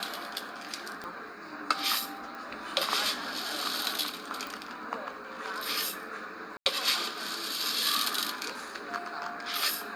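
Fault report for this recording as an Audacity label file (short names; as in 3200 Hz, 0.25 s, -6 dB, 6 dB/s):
1.040000	1.040000	pop -25 dBFS
2.350000	2.350000	pop
4.470000	4.470000	pop
6.570000	6.660000	gap 89 ms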